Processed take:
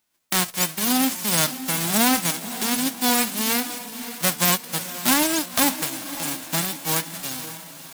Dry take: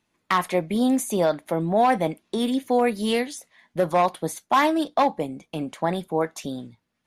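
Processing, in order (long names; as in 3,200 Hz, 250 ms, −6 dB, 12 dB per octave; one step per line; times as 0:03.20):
spectral envelope flattened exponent 0.1
feedback delay with all-pass diffusion 491 ms, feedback 50%, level −12 dB
tempo change 0.89×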